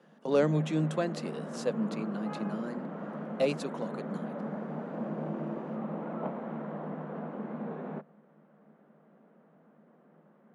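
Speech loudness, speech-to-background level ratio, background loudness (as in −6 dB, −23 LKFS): −33.0 LKFS, 5.5 dB, −38.5 LKFS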